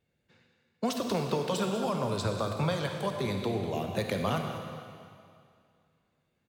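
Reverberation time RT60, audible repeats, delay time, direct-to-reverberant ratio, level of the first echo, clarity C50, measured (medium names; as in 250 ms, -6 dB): 2.3 s, 1, 195 ms, 3.0 dB, -12.0 dB, 3.5 dB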